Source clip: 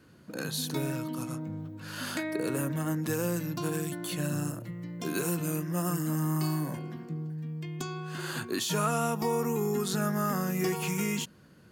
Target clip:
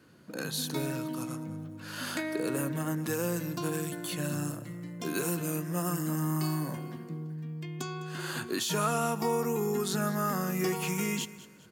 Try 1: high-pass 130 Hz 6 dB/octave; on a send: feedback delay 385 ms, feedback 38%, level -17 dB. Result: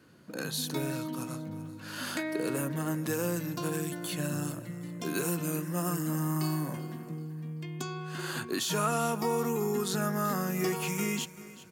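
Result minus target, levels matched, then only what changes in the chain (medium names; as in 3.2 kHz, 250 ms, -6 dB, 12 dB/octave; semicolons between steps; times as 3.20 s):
echo 180 ms late
change: feedback delay 205 ms, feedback 38%, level -17 dB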